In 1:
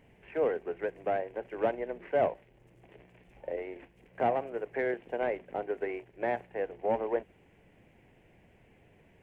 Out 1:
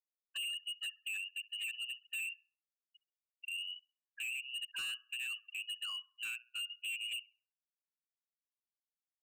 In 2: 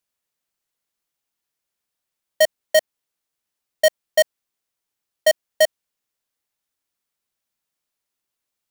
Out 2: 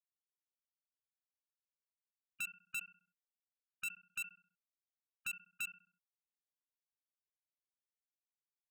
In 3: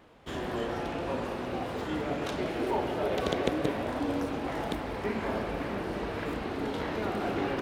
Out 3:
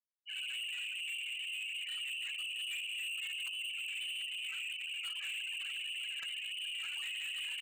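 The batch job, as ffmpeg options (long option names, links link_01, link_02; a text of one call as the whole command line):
ffmpeg -i in.wav -filter_complex "[0:a]highpass=320,acompressor=threshold=-36dB:ratio=2.5,adynamicequalizer=threshold=0.00447:dfrequency=530:dqfactor=2.5:tfrequency=530:tqfactor=2.5:attack=5:release=100:ratio=0.375:range=1.5:mode=boostabove:tftype=bell,lowpass=frequency=2800:width_type=q:width=0.5098,lowpass=frequency=2800:width_type=q:width=0.6013,lowpass=frequency=2800:width_type=q:width=0.9,lowpass=frequency=2800:width_type=q:width=2.563,afreqshift=-3300,afftfilt=real='re*gte(hypot(re,im),0.0251)':imag='im*gte(hypot(re,im),0.0251)':win_size=1024:overlap=0.75,asplit=2[link_01][link_02];[link_02]adelay=66,lowpass=frequency=1500:poles=1,volume=-19dB,asplit=2[link_03][link_04];[link_04]adelay=66,lowpass=frequency=1500:poles=1,volume=0.55,asplit=2[link_05][link_06];[link_06]adelay=66,lowpass=frequency=1500:poles=1,volume=0.55,asplit=2[link_07][link_08];[link_08]adelay=66,lowpass=frequency=1500:poles=1,volume=0.55,asplit=2[link_09][link_10];[link_10]adelay=66,lowpass=frequency=1500:poles=1,volume=0.55[link_11];[link_01][link_03][link_05][link_07][link_09][link_11]amix=inputs=6:normalize=0,asoftclip=type=hard:threshold=-37.5dB" out.wav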